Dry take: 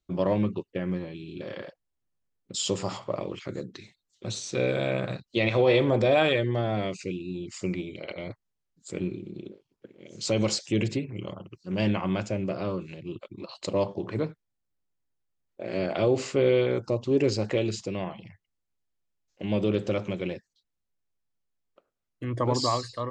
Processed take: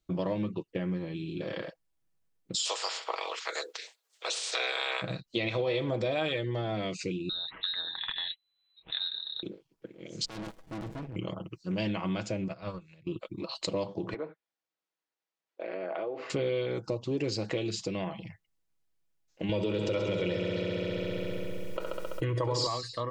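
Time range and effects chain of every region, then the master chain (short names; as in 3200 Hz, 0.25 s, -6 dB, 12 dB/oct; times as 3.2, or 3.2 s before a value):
2.64–5.01 spectral limiter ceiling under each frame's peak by 22 dB + elliptic high-pass 430 Hz, stop band 80 dB
7.29–9.43 low shelf 430 Hz -7 dB + inverted band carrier 4000 Hz + mismatched tape noise reduction encoder only
10.25–11.16 bell 4700 Hz -10.5 dB 1.1 oct + tube stage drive 38 dB, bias 0.55 + running maximum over 33 samples
12.48–13.07 notch 3000 Hz, Q 11 + gate -30 dBFS, range -14 dB + bell 330 Hz -12 dB 1.6 oct
14.14–16.3 compressor 2.5:1, threshold -30 dBFS + treble ducked by the level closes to 1700 Hz, closed at -31 dBFS + BPF 480–5300 Hz
19.49–22.67 comb 2.1 ms, depth 57% + multi-head echo 67 ms, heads first and second, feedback 70%, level -12.5 dB + fast leveller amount 70%
whole clip: comb 6.2 ms, depth 37%; dynamic EQ 4100 Hz, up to +5 dB, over -48 dBFS, Q 1.2; compressor 3:1, threshold -33 dBFS; gain +2 dB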